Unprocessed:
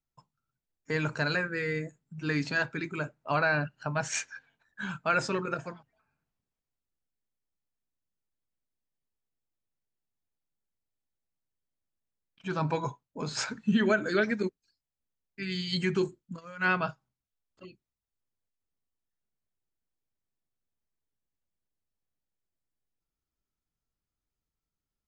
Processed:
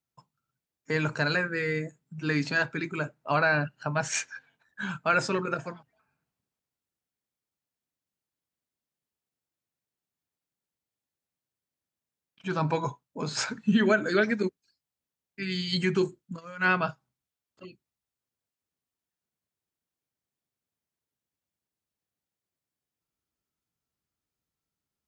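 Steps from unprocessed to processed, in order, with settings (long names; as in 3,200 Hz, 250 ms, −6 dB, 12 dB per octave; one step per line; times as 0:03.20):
high-pass filter 86 Hz
level +2.5 dB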